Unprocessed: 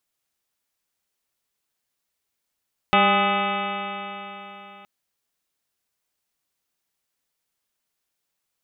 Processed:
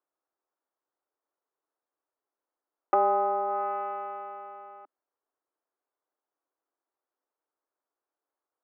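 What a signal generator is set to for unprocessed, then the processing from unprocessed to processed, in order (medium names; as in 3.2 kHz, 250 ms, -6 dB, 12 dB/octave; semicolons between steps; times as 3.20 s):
stretched partials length 1.92 s, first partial 196 Hz, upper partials -4/-1/5/-8/4.5/-8.5/-12/-3.5/-5/0/-4.5/-10/-9.5 dB, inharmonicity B 0.0038, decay 3.77 s, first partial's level -23 dB
low-pass 1.3 kHz 24 dB/octave; low-pass that closes with the level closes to 880 Hz, closed at -21.5 dBFS; steep high-pass 280 Hz 48 dB/octave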